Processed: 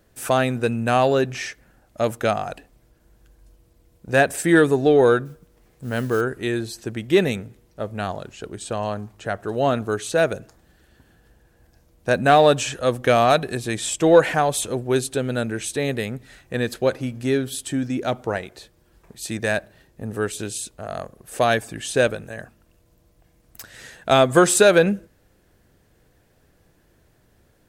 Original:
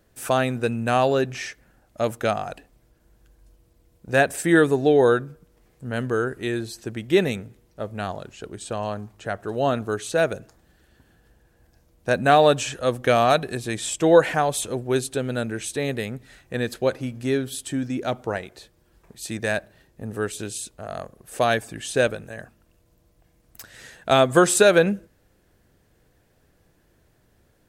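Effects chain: in parallel at -10 dB: soft clip -15 dBFS, distortion -11 dB; 5.25–6.21 on the sum: modulation noise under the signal 24 dB

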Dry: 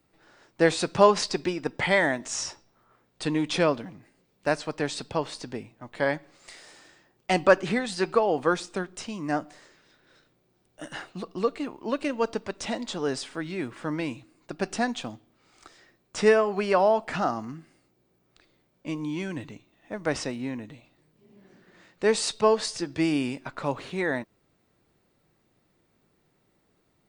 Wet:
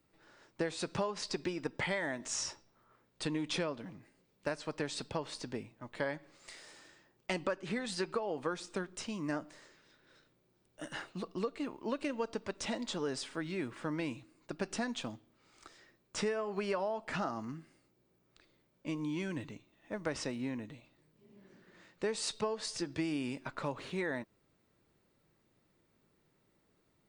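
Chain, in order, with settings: notch 740 Hz, Q 12; compressor 8:1, threshold -27 dBFS, peak gain reduction 15.5 dB; gain -4.5 dB

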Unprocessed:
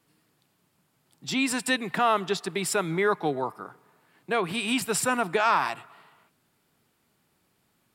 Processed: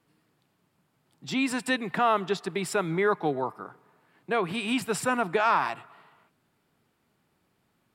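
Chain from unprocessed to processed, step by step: high shelf 3800 Hz -8.5 dB

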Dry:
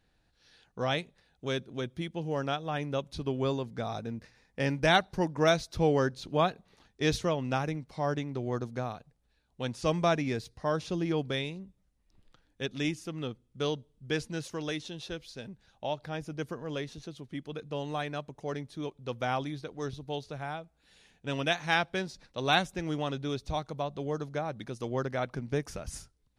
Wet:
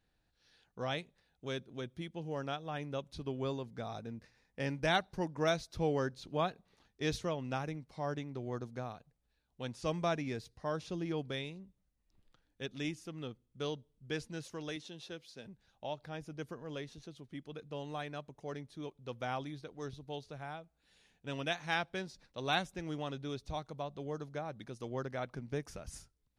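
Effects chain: 14.76–15.46 HPF 140 Hz 12 dB/oct; gain -7 dB

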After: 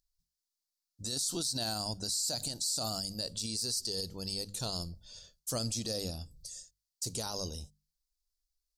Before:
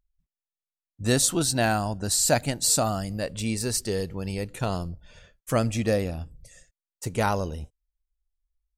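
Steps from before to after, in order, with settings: resonant high shelf 3200 Hz +13.5 dB, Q 3; notches 50/100/150/200 Hz; limiter -15.5 dBFS, peak gain reduction 22 dB; gain -8.5 dB

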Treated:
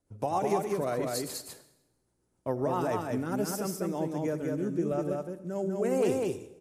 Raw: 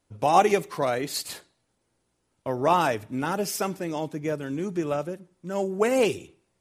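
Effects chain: bell 3000 Hz -10 dB 1.6 oct; limiter -17.5 dBFS, peak gain reduction 10 dB; rotary speaker horn 7.5 Hz, later 1 Hz, at 2.66; echo 0.199 s -3 dB; on a send at -15 dB: reverb RT60 0.90 s, pre-delay 69 ms; on the sum: gain -1 dB

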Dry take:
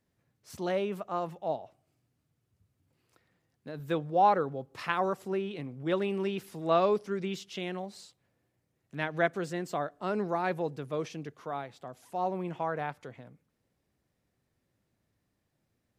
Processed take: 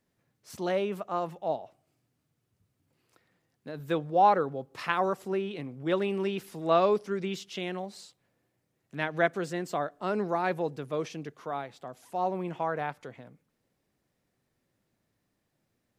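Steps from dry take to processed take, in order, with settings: bell 69 Hz -7 dB 1.5 oct; gain +2 dB

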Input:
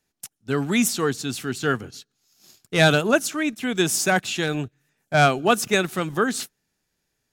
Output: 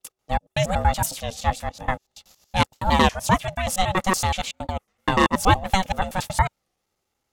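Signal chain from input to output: slices in reverse order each 94 ms, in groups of 3; small resonant body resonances 470/880/3100 Hz, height 10 dB, ringing for 25 ms; ring modulator 380 Hz; record warp 33 1/3 rpm, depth 160 cents

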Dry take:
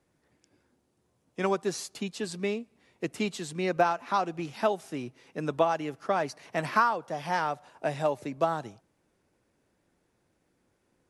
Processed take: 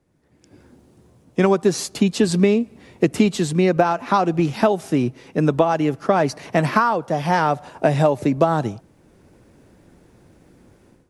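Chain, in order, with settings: AGC gain up to 16 dB; low shelf 470 Hz +9.5 dB; compressor, threshold -11 dBFS, peak gain reduction 7.5 dB; gain -1 dB

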